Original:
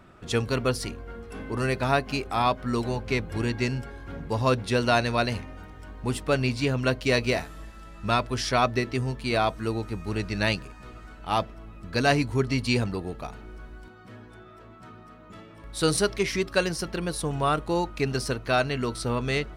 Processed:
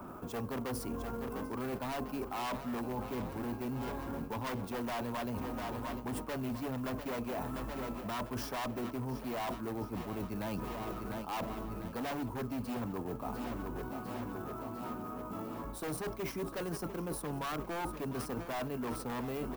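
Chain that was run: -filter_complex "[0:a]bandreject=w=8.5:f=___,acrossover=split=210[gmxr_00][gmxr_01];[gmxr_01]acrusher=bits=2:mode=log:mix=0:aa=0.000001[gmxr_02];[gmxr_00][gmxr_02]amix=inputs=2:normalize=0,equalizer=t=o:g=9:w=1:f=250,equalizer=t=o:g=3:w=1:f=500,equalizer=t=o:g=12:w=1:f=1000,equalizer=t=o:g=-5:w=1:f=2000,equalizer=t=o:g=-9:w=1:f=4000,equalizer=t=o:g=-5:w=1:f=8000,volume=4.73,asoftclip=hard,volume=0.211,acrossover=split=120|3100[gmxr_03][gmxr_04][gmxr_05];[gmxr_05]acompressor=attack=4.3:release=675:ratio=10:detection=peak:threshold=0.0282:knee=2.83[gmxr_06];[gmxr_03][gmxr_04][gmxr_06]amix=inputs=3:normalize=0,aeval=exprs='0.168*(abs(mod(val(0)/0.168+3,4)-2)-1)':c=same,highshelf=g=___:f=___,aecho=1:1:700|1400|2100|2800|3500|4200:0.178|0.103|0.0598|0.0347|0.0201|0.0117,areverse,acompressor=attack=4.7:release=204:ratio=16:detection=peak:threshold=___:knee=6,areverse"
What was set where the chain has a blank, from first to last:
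1900, 11, 11000, 0.02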